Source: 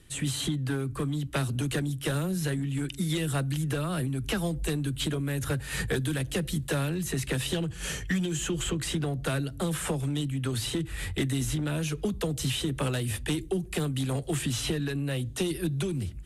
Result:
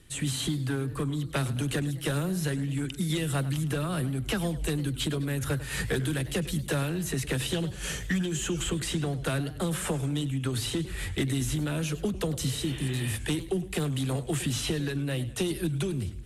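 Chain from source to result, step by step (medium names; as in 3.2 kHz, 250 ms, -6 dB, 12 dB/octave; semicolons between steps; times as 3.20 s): spectral replace 12.48–13.09 s, 400–3700 Hz both; modulated delay 103 ms, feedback 45%, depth 189 cents, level -15.5 dB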